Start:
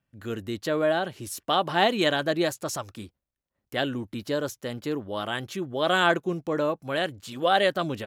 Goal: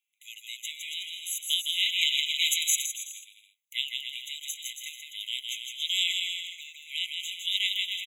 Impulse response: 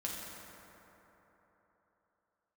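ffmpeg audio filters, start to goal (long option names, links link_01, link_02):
-filter_complex "[0:a]highshelf=frequency=3400:gain=8,asplit=2[link_01][link_02];[link_02]aecho=0:1:160|280|370|437.5|488.1:0.631|0.398|0.251|0.158|0.1[link_03];[link_01][link_03]amix=inputs=2:normalize=0,asplit=3[link_04][link_05][link_06];[link_04]afade=type=out:start_time=2.38:duration=0.02[link_07];[link_05]acontrast=39,afade=type=in:start_time=2.38:duration=0.02,afade=type=out:start_time=2.85:duration=0.02[link_08];[link_06]afade=type=in:start_time=2.85:duration=0.02[link_09];[link_07][link_08][link_09]amix=inputs=3:normalize=0,afftfilt=real='re*eq(mod(floor(b*sr/1024/2000),2),1)':imag='im*eq(mod(floor(b*sr/1024/2000),2),1)':win_size=1024:overlap=0.75"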